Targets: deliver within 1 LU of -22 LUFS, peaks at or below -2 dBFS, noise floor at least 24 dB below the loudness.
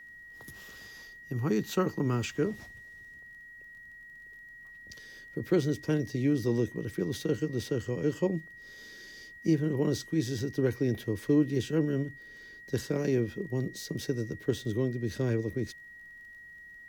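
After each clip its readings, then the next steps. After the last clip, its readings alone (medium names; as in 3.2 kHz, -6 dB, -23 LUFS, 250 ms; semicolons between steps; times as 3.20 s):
tick rate 20 per s; steady tone 1.9 kHz; tone level -47 dBFS; loudness -31.0 LUFS; peak level -14.5 dBFS; loudness target -22.0 LUFS
-> de-click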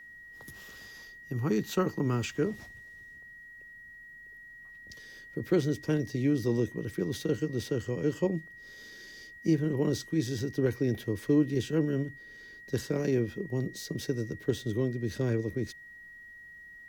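tick rate 0.47 per s; steady tone 1.9 kHz; tone level -47 dBFS
-> band-stop 1.9 kHz, Q 30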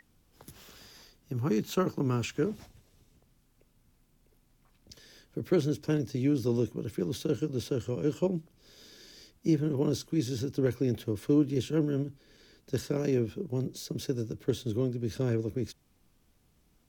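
steady tone not found; loudness -31.0 LUFS; peak level -14.0 dBFS; loudness target -22.0 LUFS
-> trim +9 dB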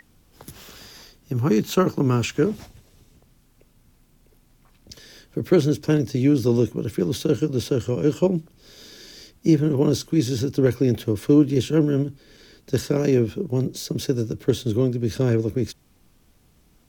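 loudness -22.0 LUFS; peak level -5.0 dBFS; noise floor -59 dBFS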